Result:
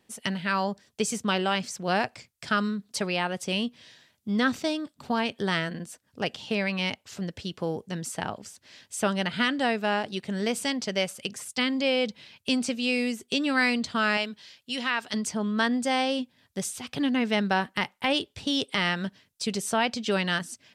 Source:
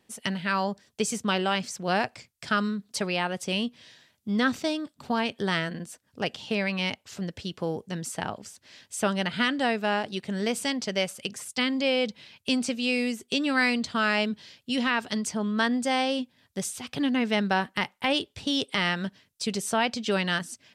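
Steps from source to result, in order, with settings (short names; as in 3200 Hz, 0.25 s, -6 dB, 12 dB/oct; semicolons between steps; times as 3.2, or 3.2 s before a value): 14.17–15.14 low shelf 490 Hz -10.5 dB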